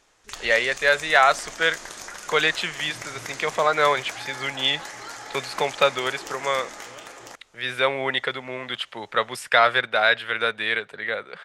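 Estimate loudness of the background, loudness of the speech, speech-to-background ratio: −37.0 LKFS, −23.0 LKFS, 14.0 dB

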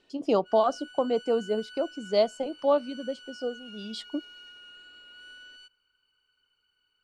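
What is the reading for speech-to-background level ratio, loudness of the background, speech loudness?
18.0 dB, −46.5 LKFS, −28.5 LKFS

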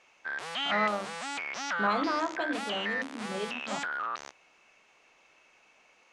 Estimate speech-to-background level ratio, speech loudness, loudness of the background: 0.5 dB, −33.5 LKFS, −34.0 LKFS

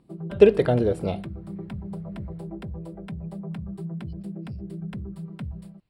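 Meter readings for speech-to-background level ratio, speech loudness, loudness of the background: 15.5 dB, −21.0 LKFS, −36.5 LKFS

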